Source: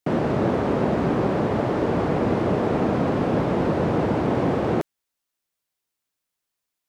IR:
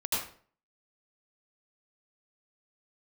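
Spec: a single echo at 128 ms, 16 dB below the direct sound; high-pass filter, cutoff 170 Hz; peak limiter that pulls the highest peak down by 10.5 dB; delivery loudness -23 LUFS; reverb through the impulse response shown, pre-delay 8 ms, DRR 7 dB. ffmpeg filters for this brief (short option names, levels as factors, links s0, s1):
-filter_complex "[0:a]highpass=170,alimiter=limit=0.106:level=0:latency=1,aecho=1:1:128:0.158,asplit=2[s0][s1];[1:a]atrim=start_sample=2205,adelay=8[s2];[s1][s2]afir=irnorm=-1:irlink=0,volume=0.188[s3];[s0][s3]amix=inputs=2:normalize=0,volume=1.58"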